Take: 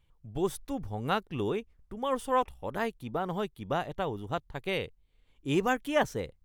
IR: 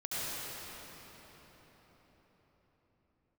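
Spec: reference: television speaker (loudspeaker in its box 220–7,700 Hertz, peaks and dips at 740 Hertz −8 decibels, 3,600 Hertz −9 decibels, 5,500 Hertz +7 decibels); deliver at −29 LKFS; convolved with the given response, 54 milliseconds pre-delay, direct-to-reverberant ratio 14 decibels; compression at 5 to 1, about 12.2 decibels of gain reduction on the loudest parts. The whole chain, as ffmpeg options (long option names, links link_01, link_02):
-filter_complex "[0:a]acompressor=threshold=-35dB:ratio=5,asplit=2[link_01][link_02];[1:a]atrim=start_sample=2205,adelay=54[link_03];[link_02][link_03]afir=irnorm=-1:irlink=0,volume=-20dB[link_04];[link_01][link_04]amix=inputs=2:normalize=0,highpass=frequency=220:width=0.5412,highpass=frequency=220:width=1.3066,equalizer=frequency=740:width_type=q:width=4:gain=-8,equalizer=frequency=3600:width_type=q:width=4:gain=-9,equalizer=frequency=5500:width_type=q:width=4:gain=7,lowpass=frequency=7700:width=0.5412,lowpass=frequency=7700:width=1.3066,volume=13.5dB"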